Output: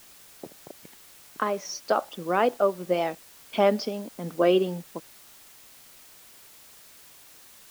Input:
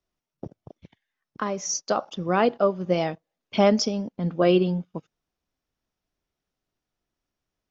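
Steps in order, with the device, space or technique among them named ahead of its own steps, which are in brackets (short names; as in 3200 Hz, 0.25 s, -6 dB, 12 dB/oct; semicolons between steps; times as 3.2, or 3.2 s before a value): dictaphone (BPF 280–3500 Hz; AGC gain up to 12.5 dB; wow and flutter; white noise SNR 22 dB); gain -8.5 dB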